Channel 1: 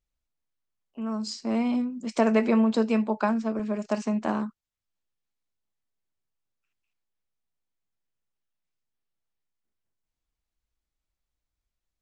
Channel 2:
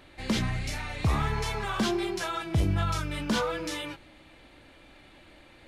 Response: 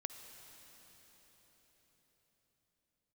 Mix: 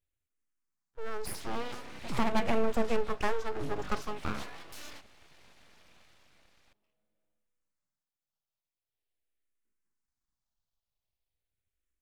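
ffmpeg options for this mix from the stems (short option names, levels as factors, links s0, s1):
-filter_complex "[0:a]aeval=exprs='clip(val(0),-1,0.075)':c=same,asplit=2[s0][s1];[s1]afreqshift=-0.43[s2];[s0][s2]amix=inputs=2:normalize=1,volume=0.891,asplit=3[s3][s4][s5];[s4]volume=0.168[s6];[1:a]equalizer=f=320:t=o:w=0.84:g=-13,dynaudnorm=f=150:g=11:m=2,adelay=1050,volume=0.355,asplit=2[s7][s8];[s8]volume=0.0668[s9];[s5]apad=whole_len=296738[s10];[s7][s10]sidechaincompress=threshold=0.0112:ratio=8:attack=11:release=839[s11];[2:a]atrim=start_sample=2205[s12];[s6][s9]amix=inputs=2:normalize=0[s13];[s13][s12]afir=irnorm=-1:irlink=0[s14];[s3][s11][s14]amix=inputs=3:normalize=0,aeval=exprs='abs(val(0))':c=same"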